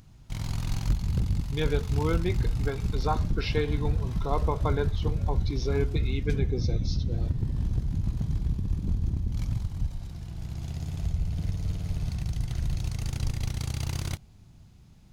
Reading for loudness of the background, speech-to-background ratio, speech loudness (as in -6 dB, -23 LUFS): -31.0 LUFS, -2.0 dB, -33.0 LUFS